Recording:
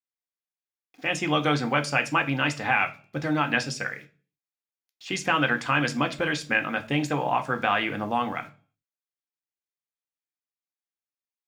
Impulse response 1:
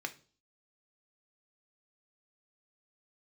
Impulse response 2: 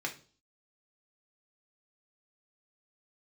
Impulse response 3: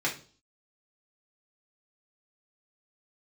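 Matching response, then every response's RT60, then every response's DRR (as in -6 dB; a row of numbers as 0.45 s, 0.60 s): 1; 0.40 s, 0.40 s, 0.40 s; 6.0 dB, 0.5 dB, -4.0 dB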